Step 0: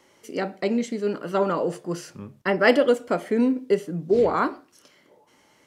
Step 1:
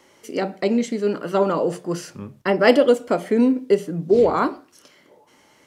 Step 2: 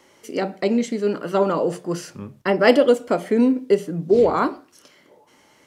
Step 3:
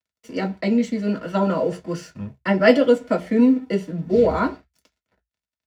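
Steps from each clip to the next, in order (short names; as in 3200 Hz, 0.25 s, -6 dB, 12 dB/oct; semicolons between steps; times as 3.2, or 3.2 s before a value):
notches 60/120/180 Hz; dynamic EQ 1700 Hz, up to -5 dB, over -37 dBFS, Q 1.5; gain +4 dB
nothing audible
crossover distortion -46 dBFS; reverb RT60 0.10 s, pre-delay 3 ms, DRR 1.5 dB; gain -9.5 dB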